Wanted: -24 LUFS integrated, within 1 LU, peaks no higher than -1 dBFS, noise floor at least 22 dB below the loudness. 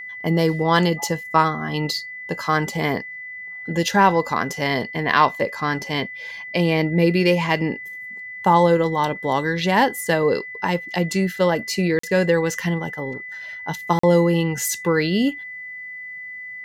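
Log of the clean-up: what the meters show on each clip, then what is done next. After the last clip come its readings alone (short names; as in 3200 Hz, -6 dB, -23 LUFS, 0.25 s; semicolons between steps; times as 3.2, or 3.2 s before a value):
dropouts 2; longest dropout 44 ms; steady tone 2000 Hz; tone level -32 dBFS; loudness -20.5 LUFS; peak -2.5 dBFS; loudness target -24.0 LUFS
-> interpolate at 11.99/13.99, 44 ms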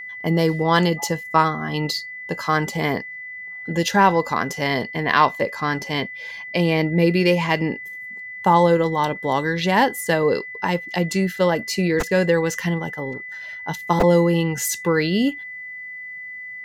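dropouts 0; steady tone 2000 Hz; tone level -32 dBFS
-> notch 2000 Hz, Q 30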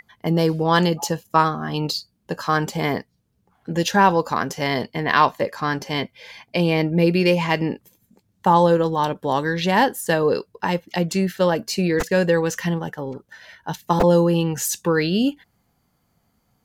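steady tone none; loudness -20.5 LUFS; peak -2.5 dBFS; loudness target -24.0 LUFS
-> gain -3.5 dB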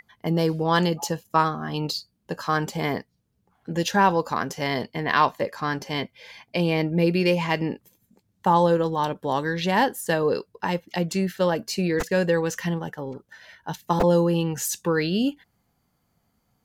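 loudness -24.5 LUFS; peak -6.0 dBFS; noise floor -72 dBFS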